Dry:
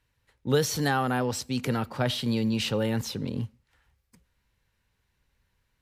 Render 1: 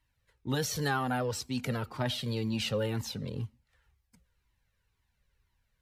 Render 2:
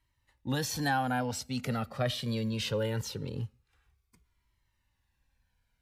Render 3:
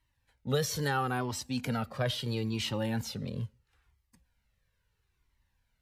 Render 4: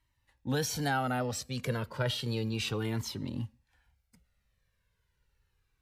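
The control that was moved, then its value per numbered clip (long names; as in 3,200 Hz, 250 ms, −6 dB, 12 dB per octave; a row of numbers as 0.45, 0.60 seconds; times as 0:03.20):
flanger whose copies keep moving one way, speed: 2, 0.22, 0.75, 0.32 Hertz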